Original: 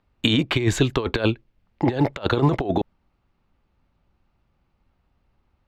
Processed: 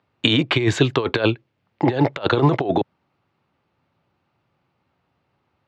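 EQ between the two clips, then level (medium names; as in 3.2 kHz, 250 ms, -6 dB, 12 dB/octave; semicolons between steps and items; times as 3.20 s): high-pass 110 Hz 24 dB/octave; low-pass 5.4 kHz 12 dB/octave; peaking EQ 210 Hz -6 dB 0.63 oct; +4.0 dB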